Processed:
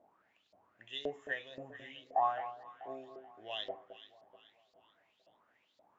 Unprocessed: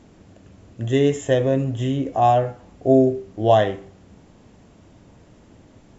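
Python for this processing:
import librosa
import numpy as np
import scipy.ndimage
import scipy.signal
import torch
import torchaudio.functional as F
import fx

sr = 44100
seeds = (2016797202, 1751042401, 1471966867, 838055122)

y = fx.filter_lfo_bandpass(x, sr, shape='saw_up', hz=1.9, low_hz=610.0, high_hz=4700.0, q=7.5)
y = fx.echo_alternate(y, sr, ms=216, hz=1100.0, feedback_pct=62, wet_db=-11.0)
y = y * 10.0 ** (-1.5 / 20.0)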